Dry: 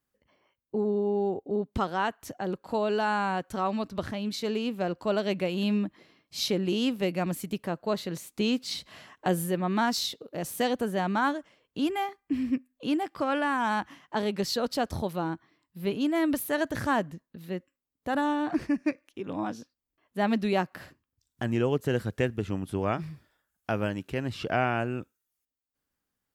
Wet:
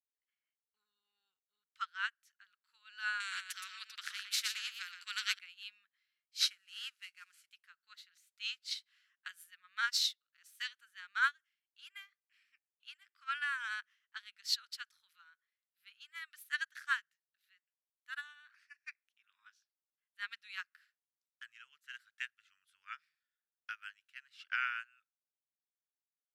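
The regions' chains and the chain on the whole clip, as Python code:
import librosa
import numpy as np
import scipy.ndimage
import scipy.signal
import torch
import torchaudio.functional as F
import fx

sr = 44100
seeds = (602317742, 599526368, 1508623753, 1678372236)

y = fx.chain(x, sr, fx.echo_single(ms=119, db=-5.5),
    fx.spectral_comp(ratio=2.0), at=(3.2, 5.39))
y = fx.chain(y, sr, fx.cvsd(bps=64000),
    fx.highpass(hz=200.0, slope=12),
    fx.notch(hz=3600.0, q=16.0), at=(6.4, 7.49))
y = scipy.signal.sosfilt(scipy.signal.ellip(4, 1.0, 50, 1400.0, 'highpass', fs=sr, output='sos'), y)
y = fx.high_shelf(y, sr, hz=9300.0, db=-8.5)
y = fx.upward_expand(y, sr, threshold_db=-46.0, expansion=2.5)
y = y * 10.0 ** (4.0 / 20.0)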